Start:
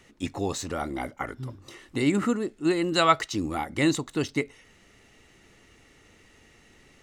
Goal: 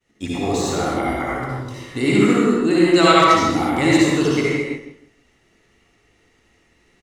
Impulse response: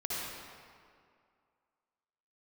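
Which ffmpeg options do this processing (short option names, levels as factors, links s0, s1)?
-filter_complex "[0:a]agate=range=0.0224:threshold=0.00447:ratio=3:detection=peak,asplit=2[s0][s1];[s1]adelay=158,lowpass=f=1700:p=1,volume=0.282,asplit=2[s2][s3];[s3]adelay=158,lowpass=f=1700:p=1,volume=0.23,asplit=2[s4][s5];[s5]adelay=158,lowpass=f=1700:p=1,volume=0.23[s6];[s0][s2][s4][s6]amix=inputs=4:normalize=0[s7];[1:a]atrim=start_sample=2205,afade=t=out:st=0.42:d=0.01,atrim=end_sample=18963[s8];[s7][s8]afir=irnorm=-1:irlink=0,volume=1.88"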